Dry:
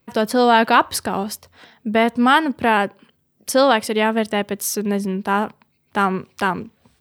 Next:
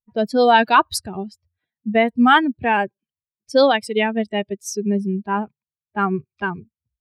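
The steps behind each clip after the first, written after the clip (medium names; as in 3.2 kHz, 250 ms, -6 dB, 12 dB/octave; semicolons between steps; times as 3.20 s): expander on every frequency bin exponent 2; level-controlled noise filter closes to 1.6 kHz, open at -17.5 dBFS; trim +3.5 dB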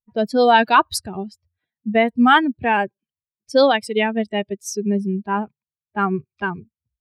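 no audible change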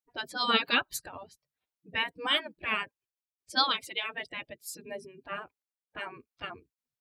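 spectral gate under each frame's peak -15 dB weak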